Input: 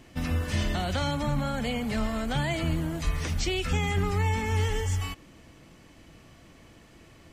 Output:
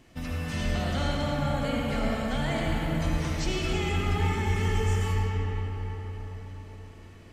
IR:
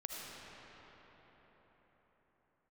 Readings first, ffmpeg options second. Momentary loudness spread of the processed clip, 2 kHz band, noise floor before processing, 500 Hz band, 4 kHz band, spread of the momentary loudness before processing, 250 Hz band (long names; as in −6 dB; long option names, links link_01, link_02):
13 LU, 0.0 dB, −54 dBFS, +1.0 dB, −1.0 dB, 4 LU, +0.5 dB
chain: -filter_complex "[1:a]atrim=start_sample=2205[link_01];[0:a][link_01]afir=irnorm=-1:irlink=0"